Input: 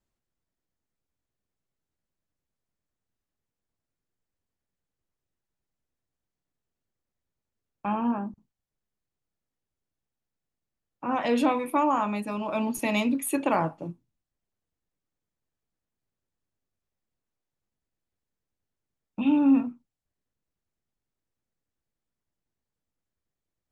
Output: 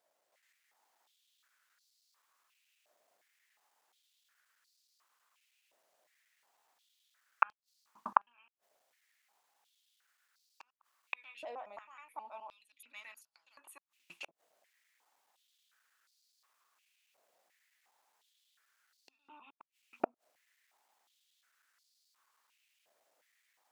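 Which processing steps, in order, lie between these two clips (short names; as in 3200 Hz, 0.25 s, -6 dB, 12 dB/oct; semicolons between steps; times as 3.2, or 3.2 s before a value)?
slices in reverse order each 0.106 s, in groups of 5; AGC gain up to 5 dB; flipped gate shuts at -21 dBFS, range -38 dB; wow and flutter 19 cents; stepped high-pass 2.8 Hz 630–4500 Hz; gain +9.5 dB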